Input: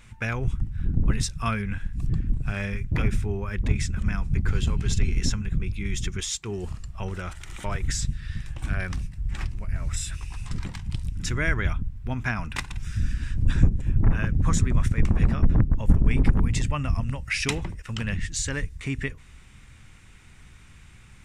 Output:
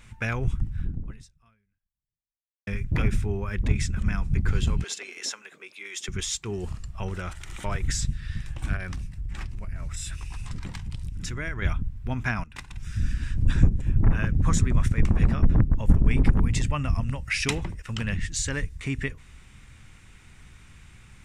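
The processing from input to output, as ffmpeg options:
ffmpeg -i in.wav -filter_complex "[0:a]asettb=1/sr,asplit=3[link_01][link_02][link_03];[link_01]atrim=end=4.844[link_04];[link_02]atrim=start=4.84:end=6.08,asetpts=PTS-STARTPTS,afade=type=in:duration=0.004:curve=qsin,afade=type=out:start_time=1.236:duration=0.004:curve=qsin,highpass=frequency=460:width=0.5412,highpass=frequency=460:width=1.3066[link_05];[link_03]atrim=start=6.076[link_06];[link_04][link_05]acrossfade=duration=0.004:curve1=hsin:curve2=qsin[link_07];[link_07][link_06]acrossfade=duration=0.004:curve1=qsin:curve2=hsin,asettb=1/sr,asplit=3[link_08][link_09][link_10];[link_08]atrim=end=8.764[link_11];[link_09]atrim=start=8.76:end=11.62,asetpts=PTS-STARTPTS,afade=type=in:duration=0.004:curve=qsin,afade=type=out:start_time=2.856:duration=0.004:curve=qsin,acompressor=threshold=-29dB:ratio=3:attack=3.2:release=140:knee=1:detection=peak[link_12];[link_10]atrim=start=11.616[link_13];[link_11][link_12]acrossfade=duration=0.004:curve1=hsin:curve2=qsin[link_14];[link_14][link_13]acrossfade=duration=0.004:curve1=qsin:curve2=hsin,asplit=3[link_15][link_16][link_17];[link_15]atrim=end=2.67,asetpts=PTS-STARTPTS,afade=type=out:start_time=0.79:duration=1.88:curve=exp[link_18];[link_16]atrim=start=2.67:end=12.44,asetpts=PTS-STARTPTS,afade=type=in:duration=0.004:curve=hsin,afade=type=out:start_time=9.766:duration=0.004:curve=hsin:silence=0.125893[link_19];[link_17]atrim=start=12.44,asetpts=PTS-STARTPTS,afade=type=in:duration=0.63:silence=0.125893[link_20];[link_18][link_19][link_20]concat=n=3:v=0:a=1" out.wav

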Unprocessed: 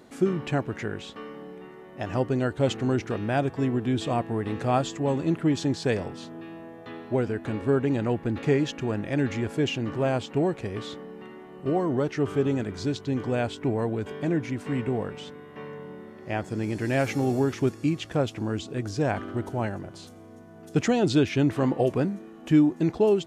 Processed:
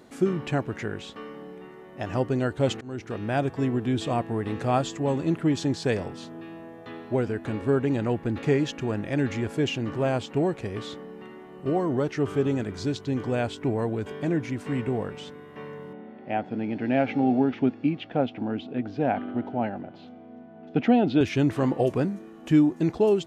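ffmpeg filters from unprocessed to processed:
ffmpeg -i in.wav -filter_complex "[0:a]asettb=1/sr,asplit=3[link_01][link_02][link_03];[link_01]atrim=end=15.934[link_04];[link_02]atrim=start=15.93:end=21.21,asetpts=PTS-STARTPTS,afade=type=in:duration=0.004:curve=qsin,afade=type=out:start_time=5.276:duration=0.004:curve=qsin,highpass=170,equalizer=frequency=250:width_type=q:width=4:gain=8,equalizer=frequency=360:width_type=q:width=4:gain=-5,equalizer=frequency=760:width_type=q:width=4:gain=7,equalizer=frequency=1100:width_type=q:width=4:gain=-8,equalizer=frequency=1800:width_type=q:width=4:gain=-4,lowpass=frequency=3200:width=0.5412,lowpass=frequency=3200:width=1.3066[link_05];[link_03]atrim=start=21.206[link_06];[link_04][link_05]acrossfade=duration=0.004:curve1=hsin:curve2=qsin[link_07];[link_07][link_06]acrossfade=duration=0.004:curve1=qsin:curve2=hsin,asplit=2[link_08][link_09];[link_08]atrim=end=2.81,asetpts=PTS-STARTPTS,afade=type=out:start_time=2.806:duration=0.004:curve=hsin:silence=0.0668344[link_10];[link_09]atrim=start=2.81,asetpts=PTS-STARTPTS,afade=type=in:duration=0.72:curve=qsin:silence=0.0668344[link_11];[link_10][link_11]concat=n=2:v=0:a=1" out.wav

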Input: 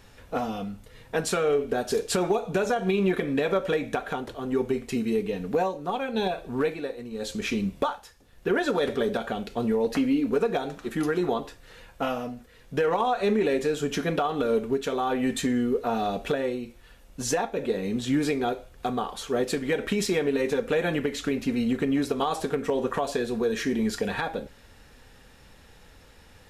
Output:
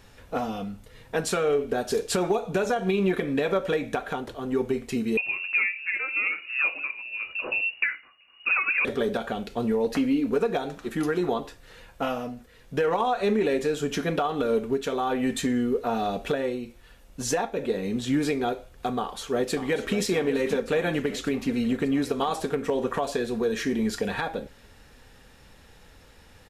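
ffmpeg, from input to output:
ffmpeg -i in.wav -filter_complex "[0:a]asettb=1/sr,asplit=3[link_01][link_02][link_03];[link_01]atrim=end=5.174[link_04];[link_02]atrim=start=5.17:end=8.85,asetpts=PTS-STARTPTS,afade=type=in:duration=0.004:curve=qsin,afade=type=out:start_time=3.676:duration=0.004:curve=qsin,lowpass=frequency=2500:width_type=q:width=0.5098,lowpass=frequency=2500:width_type=q:width=0.6013,lowpass=frequency=2500:width_type=q:width=0.9,lowpass=frequency=2500:width_type=q:width=2.563,afreqshift=-2900[link_05];[link_03]atrim=start=8.846[link_06];[link_04][link_05]acrossfade=duration=0.004:curve1=hsin:curve2=qsin[link_07];[link_07][link_06]acrossfade=duration=0.004:curve1=qsin:curve2=hsin,asplit=2[link_08][link_09];[link_09]afade=type=in:start_time=18.97:duration=0.01,afade=type=out:start_time=19.97:duration=0.01,aecho=0:1:590|1180|1770|2360|2950|3540|4130|4720:0.298538|0.19405|0.126132|0.0819861|0.0532909|0.0346391|0.0225154|0.014635[link_10];[link_08][link_10]amix=inputs=2:normalize=0" out.wav

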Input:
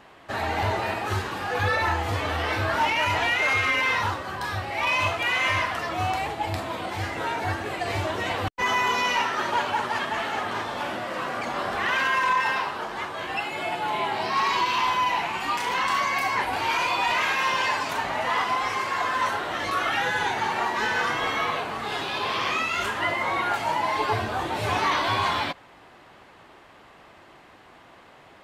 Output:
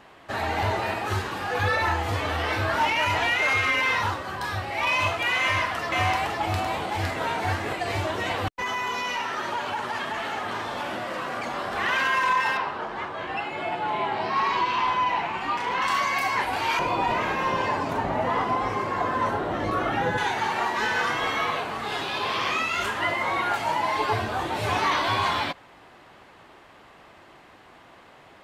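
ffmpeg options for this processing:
ffmpeg -i in.wav -filter_complex "[0:a]asettb=1/sr,asplit=3[link_01][link_02][link_03];[link_01]atrim=end=5.414[link_04];[link_02]atrim=start=5.41:end=7.73,asetpts=PTS-STARTPTS,afade=type=in:duration=0.004:curve=qsin,afade=type=out:start_time=2.316:duration=0.004:curve=qsin,aecho=1:1:510:0.708,atrim=end_sample=102312[link_05];[link_03]atrim=start=7.726[link_06];[link_04][link_05]acrossfade=duration=0.004:curve1=hsin:curve2=qsin[link_07];[link_07][link_06]acrossfade=duration=0.004:curve1=qsin:curve2=hsin,asettb=1/sr,asplit=3[link_08][link_09][link_10];[link_08]atrim=end=8.564[link_11];[link_09]atrim=start=8.56:end=11.76,asetpts=PTS-STARTPTS,afade=type=in:duration=0.004:curve=qsin,afade=type=out:start_time=3.196:duration=0.004:curve=qsin,acompressor=threshold=-26dB:ratio=3:attack=3.2:release=140:knee=1:detection=peak[link_12];[link_10]atrim=start=11.756[link_13];[link_11][link_12]acrossfade=duration=0.004:curve1=hsin:curve2=qsin[link_14];[link_14][link_13]acrossfade=duration=0.004:curve1=qsin:curve2=hsin,asettb=1/sr,asplit=3[link_15][link_16][link_17];[link_15]atrim=end=12.574[link_18];[link_16]atrim=start=12.57:end=15.82,asetpts=PTS-STARTPTS,afade=type=in:duration=0.004:curve=qsin,afade=type=out:start_time=3.246:duration=0.004:curve=qsin,aemphasis=mode=reproduction:type=75fm[link_19];[link_17]atrim=start=15.816[link_20];[link_18][link_19]acrossfade=duration=0.004:curve1=hsin:curve2=qsin[link_21];[link_21][link_20]acrossfade=duration=0.004:curve1=qsin:curve2=hsin,asettb=1/sr,asplit=3[link_22][link_23][link_24];[link_22]atrim=end=16.794[link_25];[link_23]atrim=start=16.79:end=20.18,asetpts=PTS-STARTPTS,afade=type=in:duration=0.004:curve=qsin,afade=type=out:start_time=3.386:duration=0.004:curve=qsin,tiltshelf=frequency=970:gain=10[link_26];[link_24]atrim=start=20.176[link_27];[link_25][link_26]acrossfade=duration=0.004:curve1=hsin:curve2=qsin[link_28];[link_28][link_27]acrossfade=duration=0.004:curve1=qsin:curve2=hsin" out.wav

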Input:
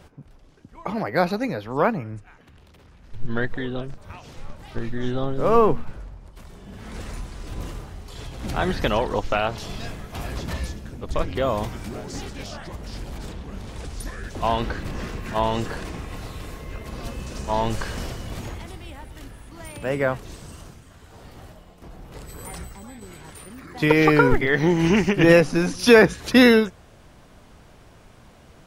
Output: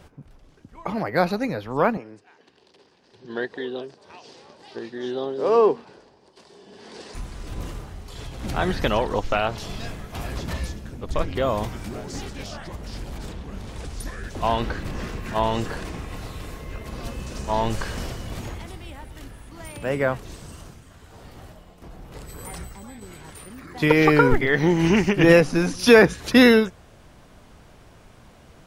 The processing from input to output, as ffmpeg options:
ffmpeg -i in.wav -filter_complex "[0:a]asettb=1/sr,asplit=3[link_01][link_02][link_03];[link_01]atrim=end=1.974[link_04];[link_02]atrim=start=1.97:end=7.15,asetpts=PTS-STARTPTS,afade=type=in:duration=0.004:curve=qsin,afade=type=out:start_time=5.176:duration=0.004:curve=qsin,highpass=340,equalizer=frequency=400:width_type=q:width=4:gain=6,equalizer=frequency=600:width_type=q:width=4:gain=-3,equalizer=frequency=1300:width_type=q:width=4:gain=-9,equalizer=frequency=2200:width_type=q:width=4:gain=-6,equalizer=frequency=4700:width_type=q:width=4:gain=7,equalizer=frequency=7100:width_type=q:width=4:gain=-4,lowpass=frequency=8500:width=0.5412,lowpass=frequency=8500:width=1.3066[link_05];[link_03]atrim=start=7.146[link_06];[link_04][link_05]acrossfade=duration=0.004:curve1=hsin:curve2=qsin[link_07];[link_07][link_06]acrossfade=duration=0.004:curve1=qsin:curve2=hsin" out.wav

